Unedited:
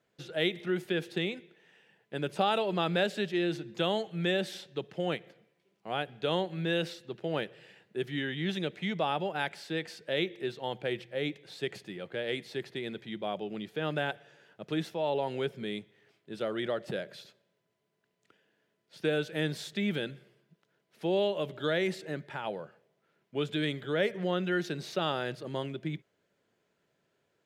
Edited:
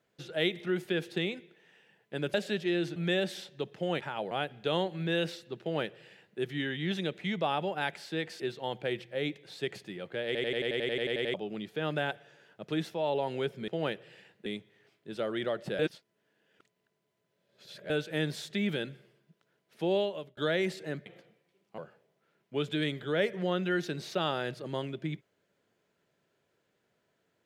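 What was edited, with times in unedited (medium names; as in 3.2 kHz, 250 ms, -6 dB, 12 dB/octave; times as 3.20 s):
2.34–3.02 s: delete
3.64–4.13 s: delete
5.17–5.89 s: swap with 22.28–22.59 s
7.19–7.97 s: copy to 15.68 s
9.98–10.40 s: delete
12.26 s: stutter in place 0.09 s, 12 plays
17.01–19.12 s: reverse
21.18–21.59 s: fade out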